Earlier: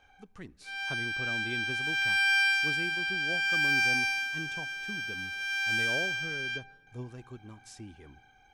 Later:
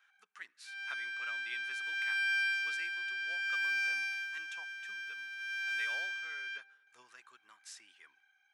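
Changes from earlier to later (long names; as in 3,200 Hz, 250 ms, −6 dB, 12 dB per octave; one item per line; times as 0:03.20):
background −11.5 dB
master: add high-pass with resonance 1,600 Hz, resonance Q 2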